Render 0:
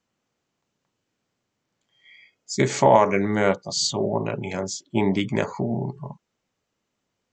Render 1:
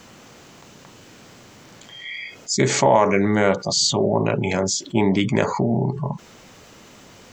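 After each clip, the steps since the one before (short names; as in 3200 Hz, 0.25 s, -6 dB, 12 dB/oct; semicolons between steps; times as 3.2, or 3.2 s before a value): fast leveller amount 50%; gain -1 dB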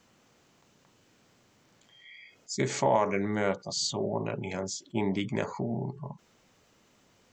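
upward expander 1.5:1, over -32 dBFS; gain -8.5 dB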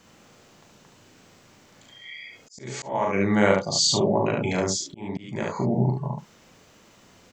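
early reflections 39 ms -4.5 dB, 71 ms -3.5 dB; auto swell 0.569 s; gain +7.5 dB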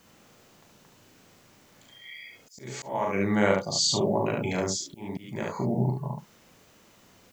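added noise blue -64 dBFS; gain -3.5 dB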